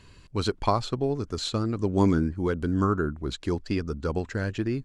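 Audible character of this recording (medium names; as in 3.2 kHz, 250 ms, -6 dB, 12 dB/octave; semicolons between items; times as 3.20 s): noise floor -52 dBFS; spectral tilt -6.0 dB/octave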